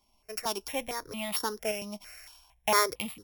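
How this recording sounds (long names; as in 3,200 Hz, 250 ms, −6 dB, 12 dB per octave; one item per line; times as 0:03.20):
a buzz of ramps at a fixed pitch in blocks of 8 samples
sample-and-hold tremolo
notches that jump at a steady rate 4.4 Hz 450–1,600 Hz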